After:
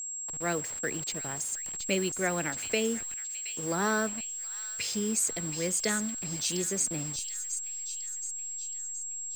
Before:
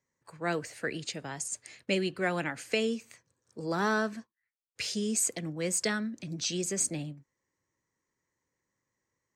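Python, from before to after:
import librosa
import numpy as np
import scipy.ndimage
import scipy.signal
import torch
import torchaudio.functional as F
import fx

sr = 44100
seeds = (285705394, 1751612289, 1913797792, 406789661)

y = fx.delta_hold(x, sr, step_db=-41.0)
y = fx.echo_wet_highpass(y, sr, ms=722, feedback_pct=51, hz=2900.0, wet_db=-7)
y = y + 10.0 ** (-35.0 / 20.0) * np.sin(2.0 * np.pi * 7600.0 * np.arange(len(y)) / sr)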